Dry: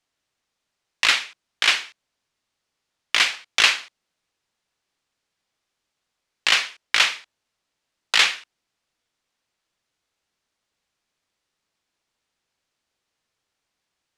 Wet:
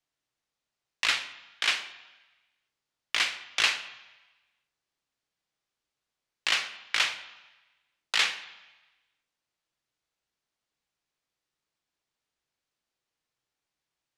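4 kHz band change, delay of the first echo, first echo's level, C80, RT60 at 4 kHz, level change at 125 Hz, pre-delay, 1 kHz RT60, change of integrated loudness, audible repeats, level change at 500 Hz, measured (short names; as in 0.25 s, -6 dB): -8.0 dB, none, none, 14.5 dB, 1.1 s, n/a, 3 ms, 1.2 s, -8.0 dB, none, -7.5 dB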